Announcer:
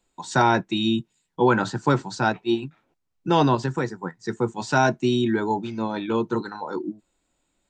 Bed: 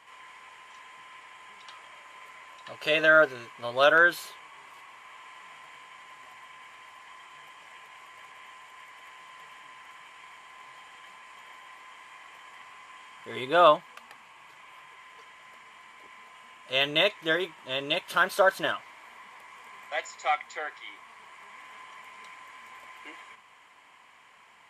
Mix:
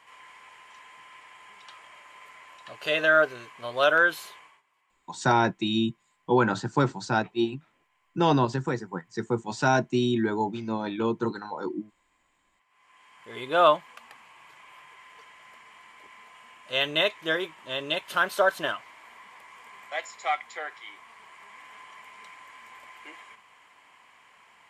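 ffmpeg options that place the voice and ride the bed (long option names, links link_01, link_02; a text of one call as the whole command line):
ffmpeg -i stem1.wav -i stem2.wav -filter_complex "[0:a]adelay=4900,volume=-3dB[link_01];[1:a]volume=21dB,afade=type=out:start_time=4.36:duration=0.26:silence=0.0841395,afade=type=in:start_time=12.68:duration=0.94:silence=0.0794328[link_02];[link_01][link_02]amix=inputs=2:normalize=0" out.wav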